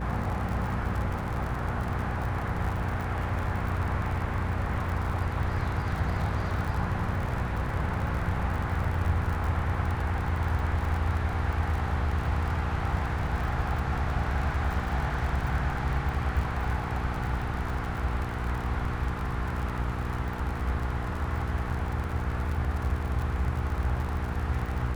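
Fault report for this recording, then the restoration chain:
crackle 55 per s -33 dBFS
hum 60 Hz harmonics 8 -34 dBFS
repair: de-click; de-hum 60 Hz, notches 8

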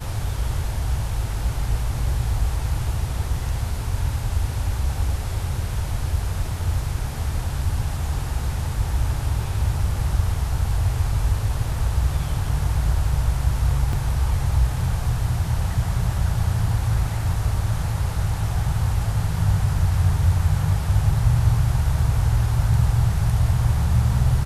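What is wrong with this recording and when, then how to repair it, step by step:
13.93 s: dropout 2.2 ms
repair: interpolate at 13.93 s, 2.2 ms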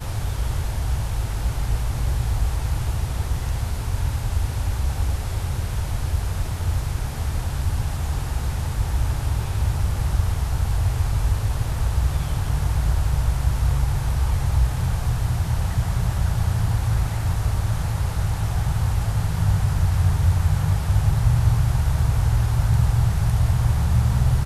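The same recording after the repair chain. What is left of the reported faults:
nothing left

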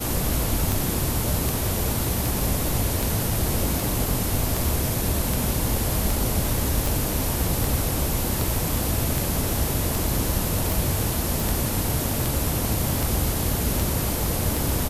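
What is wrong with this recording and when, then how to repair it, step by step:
tick 78 rpm
6.86 s: pop
11.40 s: pop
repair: de-click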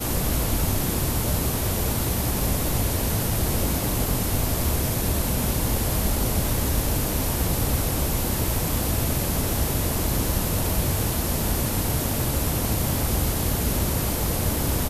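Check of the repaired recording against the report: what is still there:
nothing left

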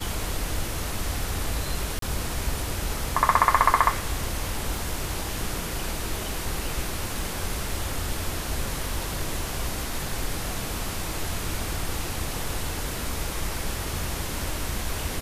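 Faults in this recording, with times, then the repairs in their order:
1.99–2.02 s: dropout 33 ms
4.77 s: pop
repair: de-click; interpolate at 1.99 s, 33 ms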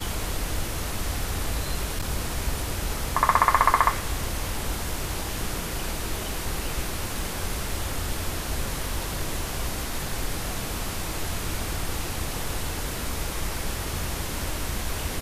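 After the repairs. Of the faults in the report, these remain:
nothing left

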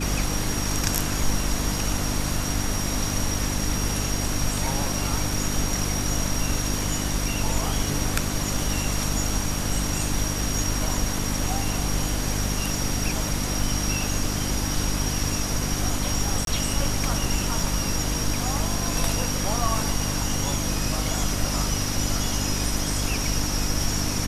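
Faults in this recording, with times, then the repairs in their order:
hum 50 Hz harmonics 6 -29 dBFS
16.45–16.47 s: dropout 22 ms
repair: de-hum 50 Hz, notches 6; interpolate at 16.45 s, 22 ms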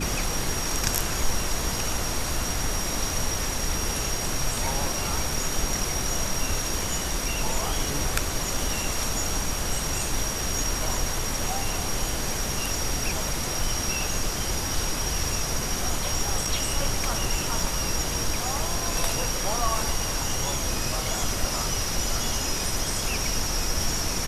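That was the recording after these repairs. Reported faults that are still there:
nothing left

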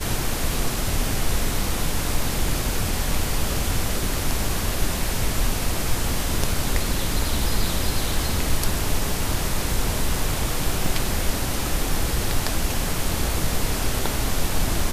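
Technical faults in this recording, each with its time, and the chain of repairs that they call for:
10.86 s: dropout 2.1 ms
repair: interpolate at 10.86 s, 2.1 ms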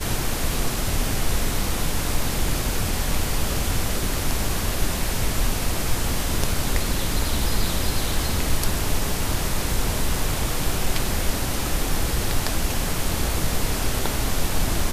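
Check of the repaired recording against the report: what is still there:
nothing left

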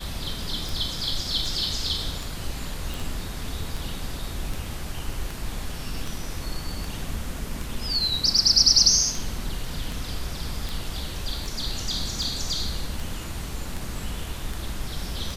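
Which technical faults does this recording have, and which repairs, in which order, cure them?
tick 78 rpm
2.94 s: pop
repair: de-click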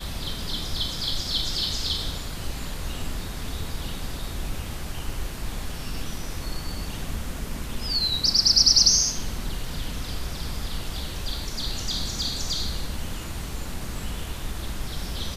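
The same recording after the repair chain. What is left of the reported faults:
nothing left

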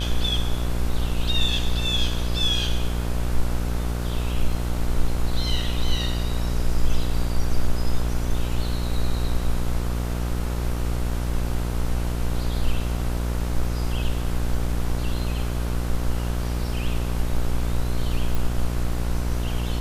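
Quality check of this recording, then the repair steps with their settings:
buzz 60 Hz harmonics 26 -26 dBFS
18.35 s: pop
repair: de-click; de-hum 60 Hz, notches 26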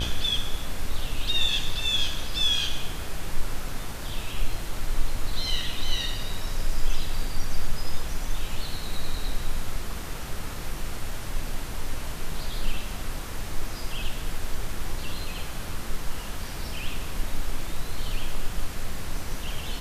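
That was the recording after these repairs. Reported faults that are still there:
nothing left

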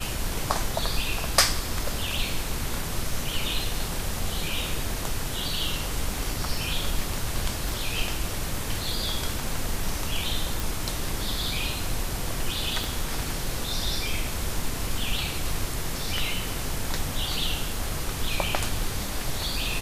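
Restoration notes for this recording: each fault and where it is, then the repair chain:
7.69 s: pop
10.60 s: pop
12.84 s: pop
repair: de-click

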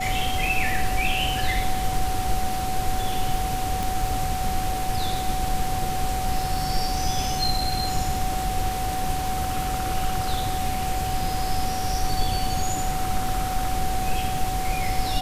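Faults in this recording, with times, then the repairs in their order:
crackle 27 per s -31 dBFS
whine 750 Hz -27 dBFS
3.83 s: pop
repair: de-click; band-stop 750 Hz, Q 30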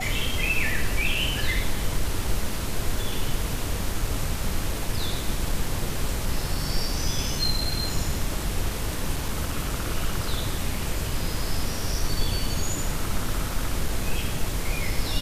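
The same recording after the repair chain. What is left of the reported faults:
nothing left

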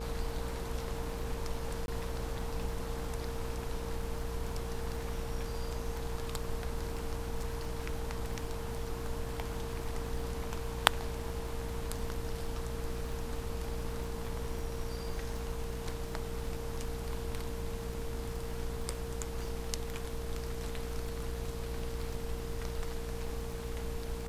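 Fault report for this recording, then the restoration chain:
buzz 60 Hz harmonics 19 -41 dBFS
crackle 29 per s -41 dBFS
whine 460 Hz -43 dBFS
1.86–1.88 s: dropout 21 ms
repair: de-click; band-stop 460 Hz, Q 30; de-hum 60 Hz, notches 19; interpolate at 1.86 s, 21 ms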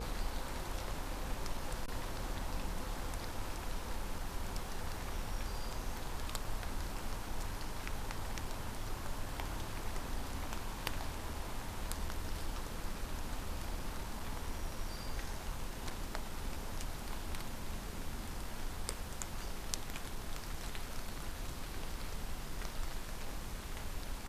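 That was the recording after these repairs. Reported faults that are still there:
nothing left

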